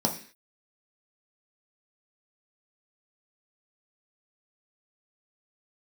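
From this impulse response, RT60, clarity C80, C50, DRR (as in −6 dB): 0.45 s, 15.5 dB, 11.0 dB, 1.0 dB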